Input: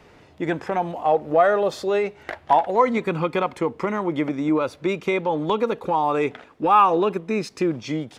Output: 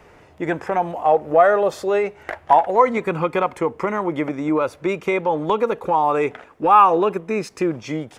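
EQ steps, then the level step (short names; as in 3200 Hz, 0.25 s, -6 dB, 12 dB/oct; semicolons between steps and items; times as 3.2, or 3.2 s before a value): ten-band EQ 125 Hz -3 dB, 250 Hz -5 dB, 4000 Hz -8 dB; +4.0 dB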